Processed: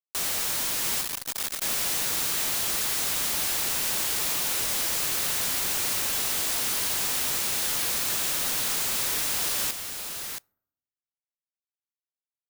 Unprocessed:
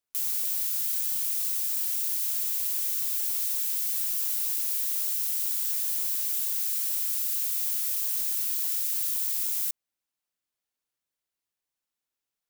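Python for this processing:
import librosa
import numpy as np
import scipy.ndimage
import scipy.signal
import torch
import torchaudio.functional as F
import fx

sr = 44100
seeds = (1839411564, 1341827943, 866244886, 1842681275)

y = scipy.signal.sosfilt(scipy.signal.butter(2, 860.0, 'highpass', fs=sr, output='sos'), x)
y = fx.peak_eq(y, sr, hz=3700.0, db=11.5, octaves=0.88)
y = fx.quant_companded(y, sr, bits=2)
y = y + 10.0 ** (-7.0 / 20.0) * np.pad(y, (int(675 * sr / 1000.0), 0))[:len(y)]
y = fx.rev_fdn(y, sr, rt60_s=0.79, lf_ratio=1.3, hf_ratio=0.35, size_ms=73.0, drr_db=18.5)
y = (np.kron(y[::3], np.eye(3)[0]) * 3)[:len(y)]
y = fx.transformer_sat(y, sr, knee_hz=2000.0, at=(1.01, 1.62))
y = y * librosa.db_to_amplitude(-7.0)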